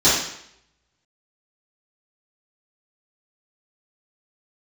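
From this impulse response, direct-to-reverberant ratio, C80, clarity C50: -13.5 dB, 5.5 dB, 1.0 dB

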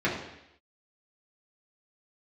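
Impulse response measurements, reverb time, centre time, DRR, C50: 0.80 s, 41 ms, -7.0 dB, 5.0 dB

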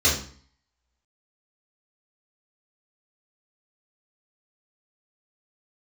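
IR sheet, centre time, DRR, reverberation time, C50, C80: 35 ms, -8.0 dB, 0.50 s, 5.5 dB, 10.0 dB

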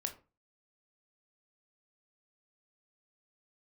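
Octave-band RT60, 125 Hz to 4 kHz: 0.40 s, 0.35 s, 0.30 s, 0.30 s, 0.25 s, 0.20 s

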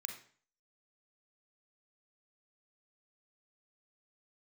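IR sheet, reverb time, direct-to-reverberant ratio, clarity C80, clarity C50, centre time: 0.45 s, 3.0 dB, 10.5 dB, 6.0 dB, 23 ms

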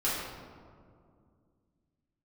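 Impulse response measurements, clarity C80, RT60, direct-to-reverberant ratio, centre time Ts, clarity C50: 2.0 dB, 2.2 s, -10.0 dB, 97 ms, -0.5 dB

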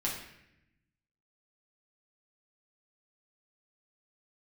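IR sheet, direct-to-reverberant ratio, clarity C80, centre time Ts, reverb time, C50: -4.5 dB, 7.5 dB, 40 ms, 0.80 s, 4.5 dB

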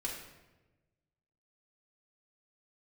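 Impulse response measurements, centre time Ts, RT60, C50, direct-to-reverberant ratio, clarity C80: 45 ms, 1.1 s, 3.5 dB, -3.5 dB, 6.0 dB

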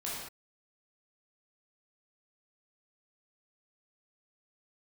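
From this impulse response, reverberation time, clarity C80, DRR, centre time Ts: no single decay rate, 2.0 dB, -7.5 dB, 74 ms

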